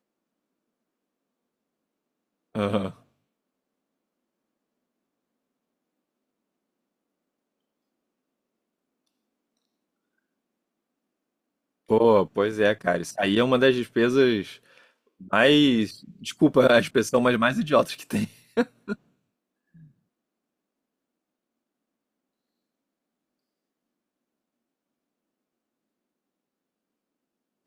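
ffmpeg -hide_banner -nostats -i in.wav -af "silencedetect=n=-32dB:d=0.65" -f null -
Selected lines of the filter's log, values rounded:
silence_start: 0.00
silence_end: 2.55 | silence_duration: 2.55
silence_start: 2.90
silence_end: 11.90 | silence_duration: 9.00
silence_start: 14.51
silence_end: 15.33 | silence_duration: 0.82
silence_start: 18.93
silence_end: 27.67 | silence_duration: 8.73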